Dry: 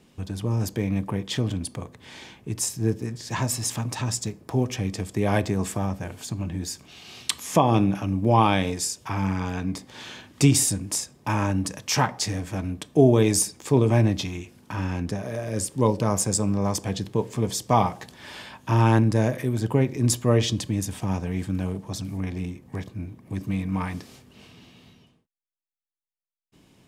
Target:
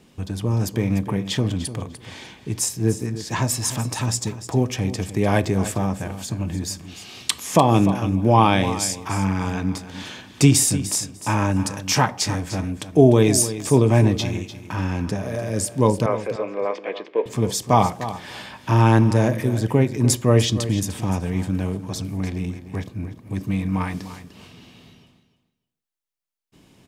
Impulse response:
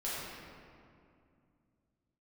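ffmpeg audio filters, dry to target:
-filter_complex "[0:a]asettb=1/sr,asplit=3[s0][s1][s2];[s0]atrim=end=16.064[s3];[s1]atrim=start=16.06:end=17.26,asetpts=PTS-STARTPTS,afade=t=in:d=0.004:c=qsin,afade=t=out:st=1.196:d=0.004:c=qsin,highpass=f=370:w=0.5412,highpass=f=370:w=1.3066,equalizer=f=510:t=q:w=4:g=6,equalizer=f=850:t=q:w=4:g=-6,equalizer=f=2200:t=q:w=4:g=6,lowpass=f=3000:w=0.5412,lowpass=f=3000:w=1.3066[s4];[s2]atrim=start=17.256[s5];[s3][s4]acrossfade=d=0.004:c1=hsin:c2=qsin[s6];[s6][s5]acrossfade=d=0.004:c1=qsin:c2=hsin,aecho=1:1:298|596:0.224|0.0336,volume=1.5"

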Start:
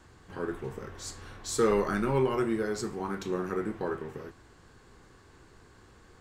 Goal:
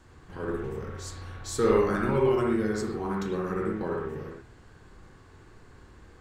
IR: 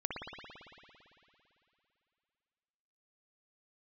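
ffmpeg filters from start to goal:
-filter_complex "[0:a]lowshelf=f=170:g=5[s0];[1:a]atrim=start_sample=2205,afade=t=out:st=0.18:d=0.01,atrim=end_sample=8379[s1];[s0][s1]afir=irnorm=-1:irlink=0"

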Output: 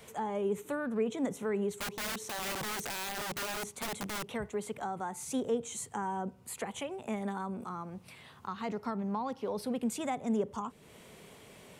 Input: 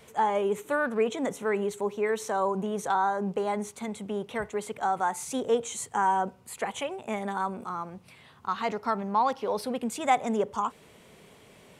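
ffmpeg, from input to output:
-filter_complex "[0:a]acrossover=split=350[s0][s1];[s1]acompressor=threshold=0.00794:ratio=2.5[s2];[s0][s2]amix=inputs=2:normalize=0,asettb=1/sr,asplit=3[s3][s4][s5];[s3]atrim=end=1.794[s6];[s4]atrim=start=1.79:end=4.32,asetpts=PTS-STARTPTS,afade=t=in:d=0.004:c=qsin,afade=t=out:st=2.526:d=0.004:c=qsin,aeval=exprs='(mod(42.2*val(0)+1,2)-1)/42.2':c=same[s7];[s5]atrim=start=4.316[s8];[s6][s7]acrossfade=d=0.004:c1=hsin:c2=qsin[s9];[s9][s8]acrossfade=d=0.004:c1=qsin:c2=hsin,highshelf=f=7000:g=4"

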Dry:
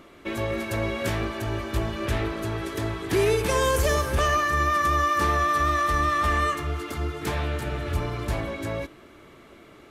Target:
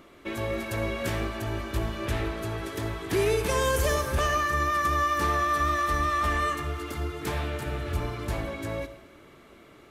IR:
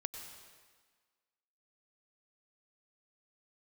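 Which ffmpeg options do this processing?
-filter_complex "[0:a]asplit=2[s0][s1];[1:a]atrim=start_sample=2205,asetrate=74970,aresample=44100,highshelf=f=12000:g=7.5[s2];[s1][s2]afir=irnorm=-1:irlink=0,volume=1.78[s3];[s0][s3]amix=inputs=2:normalize=0,volume=0.398"

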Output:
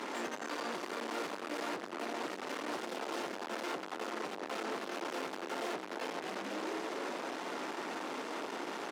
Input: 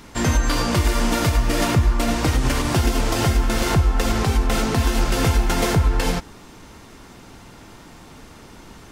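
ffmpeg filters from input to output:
-filter_complex "[0:a]alimiter=limit=0.15:level=0:latency=1:release=138,asplit=2[s0][s1];[s1]asplit=6[s2][s3][s4][s5][s6][s7];[s2]adelay=224,afreqshift=-120,volume=0.447[s8];[s3]adelay=448,afreqshift=-240,volume=0.209[s9];[s4]adelay=672,afreqshift=-360,volume=0.0989[s10];[s5]adelay=896,afreqshift=-480,volume=0.0462[s11];[s6]adelay=1120,afreqshift=-600,volume=0.0219[s12];[s7]adelay=1344,afreqshift=-720,volume=0.0102[s13];[s8][s9][s10][s11][s12][s13]amix=inputs=6:normalize=0[s14];[s0][s14]amix=inputs=2:normalize=0,acompressor=threshold=0.0282:ratio=6,aeval=exprs='(tanh(178*val(0)+0.65)-tanh(0.65))/178':c=same,highpass=f=300:w=0.5412,highpass=f=300:w=1.3066,aemphasis=mode=reproduction:type=75kf,volume=4.47"

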